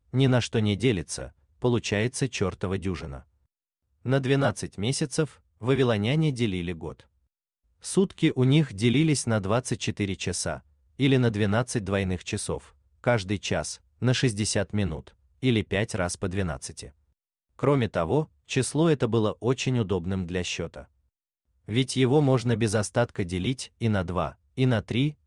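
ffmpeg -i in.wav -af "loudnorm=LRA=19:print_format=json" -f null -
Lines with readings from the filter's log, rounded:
"input_i" : "-26.5",
"input_tp" : "-9.6",
"input_lra" : "2.9",
"input_thresh" : "-36.9",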